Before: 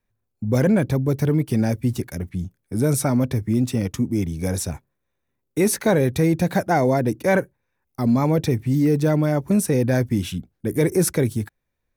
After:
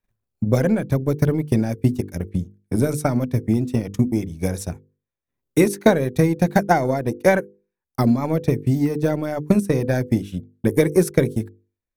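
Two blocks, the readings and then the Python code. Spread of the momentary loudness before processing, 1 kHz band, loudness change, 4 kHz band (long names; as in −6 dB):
11 LU, +2.0 dB, +0.5 dB, −2.0 dB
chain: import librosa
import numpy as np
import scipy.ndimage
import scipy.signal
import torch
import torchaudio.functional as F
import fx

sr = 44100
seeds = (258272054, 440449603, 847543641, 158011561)

y = fx.transient(x, sr, attack_db=11, sustain_db=-11)
y = fx.hum_notches(y, sr, base_hz=50, count=10)
y = y * 10.0 ** (-2.5 / 20.0)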